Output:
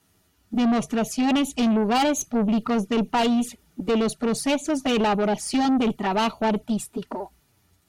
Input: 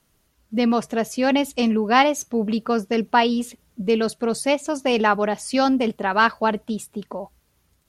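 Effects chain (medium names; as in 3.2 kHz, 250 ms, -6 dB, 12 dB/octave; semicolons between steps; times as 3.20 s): touch-sensitive flanger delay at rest 11.2 ms, full sweep at -19 dBFS; comb of notches 530 Hz; valve stage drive 24 dB, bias 0.2; trim +6.5 dB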